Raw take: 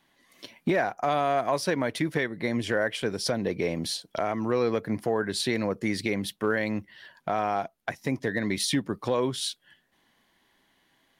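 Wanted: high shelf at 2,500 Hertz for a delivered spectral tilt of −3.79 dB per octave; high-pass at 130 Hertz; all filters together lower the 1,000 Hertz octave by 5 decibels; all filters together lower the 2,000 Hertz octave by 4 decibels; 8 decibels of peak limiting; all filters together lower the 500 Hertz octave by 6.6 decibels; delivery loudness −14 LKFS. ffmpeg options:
ffmpeg -i in.wav -af "highpass=130,equalizer=frequency=500:width_type=o:gain=-7.5,equalizer=frequency=1000:width_type=o:gain=-3,equalizer=frequency=2000:width_type=o:gain=-5,highshelf=frequency=2500:gain=3.5,volume=19dB,alimiter=limit=-2.5dB:level=0:latency=1" out.wav

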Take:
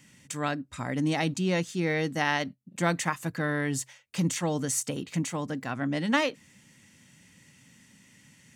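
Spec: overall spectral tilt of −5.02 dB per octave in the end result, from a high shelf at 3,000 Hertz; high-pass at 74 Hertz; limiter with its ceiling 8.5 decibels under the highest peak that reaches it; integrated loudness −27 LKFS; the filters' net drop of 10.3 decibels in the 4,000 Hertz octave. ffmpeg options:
ffmpeg -i in.wav -af "highpass=74,highshelf=frequency=3000:gain=-8.5,equalizer=frequency=4000:width_type=o:gain=-8,volume=5.5dB,alimiter=limit=-15.5dB:level=0:latency=1" out.wav

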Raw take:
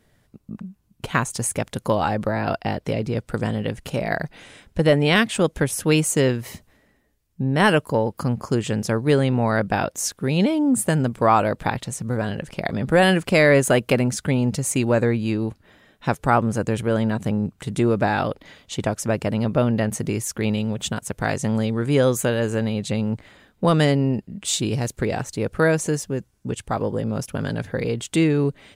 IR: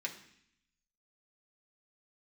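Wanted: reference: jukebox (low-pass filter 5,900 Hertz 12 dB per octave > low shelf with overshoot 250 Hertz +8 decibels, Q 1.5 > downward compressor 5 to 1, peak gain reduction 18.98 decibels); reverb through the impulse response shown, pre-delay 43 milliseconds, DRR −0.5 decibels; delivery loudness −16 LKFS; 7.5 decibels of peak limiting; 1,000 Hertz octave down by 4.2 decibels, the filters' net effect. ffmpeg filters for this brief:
-filter_complex "[0:a]equalizer=frequency=1000:width_type=o:gain=-5,alimiter=limit=-12.5dB:level=0:latency=1,asplit=2[link_01][link_02];[1:a]atrim=start_sample=2205,adelay=43[link_03];[link_02][link_03]afir=irnorm=-1:irlink=0,volume=-0.5dB[link_04];[link_01][link_04]amix=inputs=2:normalize=0,lowpass=5900,lowshelf=frequency=250:width_type=q:width=1.5:gain=8,acompressor=threshold=-27dB:ratio=5,volume=14dB"

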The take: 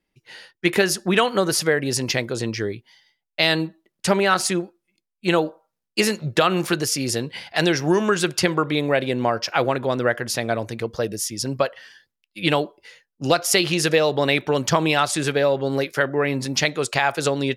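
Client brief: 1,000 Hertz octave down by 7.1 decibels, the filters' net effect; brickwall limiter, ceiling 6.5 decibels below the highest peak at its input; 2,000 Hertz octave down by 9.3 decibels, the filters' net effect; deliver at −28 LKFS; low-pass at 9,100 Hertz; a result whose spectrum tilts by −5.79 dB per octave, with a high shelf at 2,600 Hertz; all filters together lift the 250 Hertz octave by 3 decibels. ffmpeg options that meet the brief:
ffmpeg -i in.wav -af "lowpass=9100,equalizer=frequency=250:width_type=o:gain=5,equalizer=frequency=1000:width_type=o:gain=-7.5,equalizer=frequency=2000:width_type=o:gain=-6,highshelf=frequency=2600:gain=-8,volume=-3.5dB,alimiter=limit=-16.5dB:level=0:latency=1" out.wav

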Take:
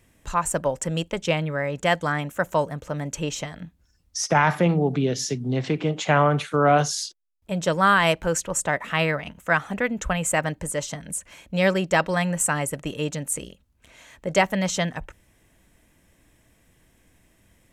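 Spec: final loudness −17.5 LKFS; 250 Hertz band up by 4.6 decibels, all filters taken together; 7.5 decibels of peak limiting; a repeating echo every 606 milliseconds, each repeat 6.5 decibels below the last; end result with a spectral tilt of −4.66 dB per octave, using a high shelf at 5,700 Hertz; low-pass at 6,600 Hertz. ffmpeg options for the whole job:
ffmpeg -i in.wav -af "lowpass=6600,equalizer=frequency=250:width_type=o:gain=7,highshelf=frequency=5700:gain=6.5,alimiter=limit=-13dB:level=0:latency=1,aecho=1:1:606|1212|1818|2424|3030|3636:0.473|0.222|0.105|0.0491|0.0231|0.0109,volume=6.5dB" out.wav

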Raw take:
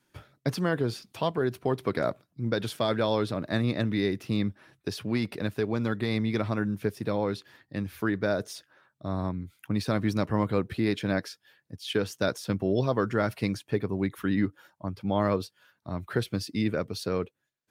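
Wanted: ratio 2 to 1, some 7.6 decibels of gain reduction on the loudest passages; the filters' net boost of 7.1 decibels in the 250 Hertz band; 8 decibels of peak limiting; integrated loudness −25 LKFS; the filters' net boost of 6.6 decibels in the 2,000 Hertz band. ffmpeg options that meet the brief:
ffmpeg -i in.wav -af "equalizer=frequency=250:width_type=o:gain=9,equalizer=frequency=2000:width_type=o:gain=8.5,acompressor=threshold=-30dB:ratio=2,volume=8.5dB,alimiter=limit=-13dB:level=0:latency=1" out.wav

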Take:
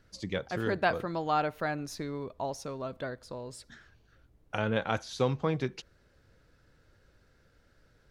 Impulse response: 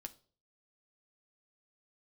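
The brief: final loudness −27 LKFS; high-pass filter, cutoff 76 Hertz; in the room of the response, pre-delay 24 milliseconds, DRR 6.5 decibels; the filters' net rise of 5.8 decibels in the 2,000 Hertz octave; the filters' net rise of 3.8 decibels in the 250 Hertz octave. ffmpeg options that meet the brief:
-filter_complex "[0:a]highpass=76,equalizer=frequency=250:width_type=o:gain=5,equalizer=frequency=2000:width_type=o:gain=8,asplit=2[link_01][link_02];[1:a]atrim=start_sample=2205,adelay=24[link_03];[link_02][link_03]afir=irnorm=-1:irlink=0,volume=-1.5dB[link_04];[link_01][link_04]amix=inputs=2:normalize=0,volume=2.5dB"

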